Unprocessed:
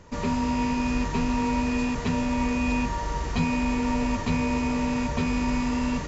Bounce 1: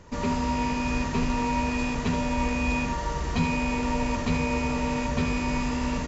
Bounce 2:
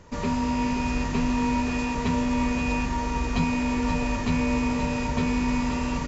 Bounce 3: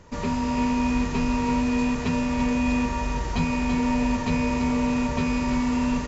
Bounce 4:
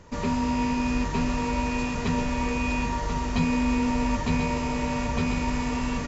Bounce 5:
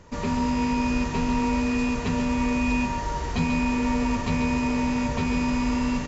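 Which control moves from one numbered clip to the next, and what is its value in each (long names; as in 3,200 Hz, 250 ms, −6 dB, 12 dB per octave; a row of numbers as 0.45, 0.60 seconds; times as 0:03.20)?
single-tap delay, delay time: 75, 527, 335, 1,038, 138 milliseconds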